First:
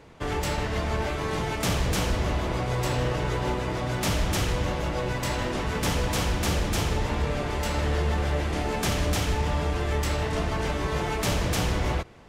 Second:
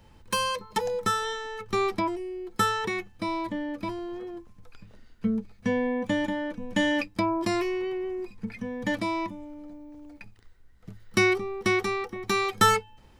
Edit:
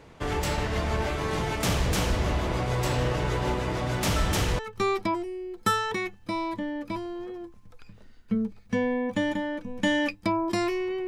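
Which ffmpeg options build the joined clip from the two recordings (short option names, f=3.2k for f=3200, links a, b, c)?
-filter_complex "[1:a]asplit=2[a][b];[0:a]apad=whole_dur=11.07,atrim=end=11.07,atrim=end=4.592[c];[b]atrim=start=1.518:end=8[d];[a]atrim=start=1.09:end=1.52,asetpts=PTS-STARTPTS,volume=-7dB,afade=t=in:d=0.004:c=hsin,afade=t=out:st=0.426:d=0.004:c=hsin,adelay=4160[e];[c][d]acrossfade=d=0.004:c1=hsin:c2=hsin[f];[f][e]amix=inputs=2:normalize=0"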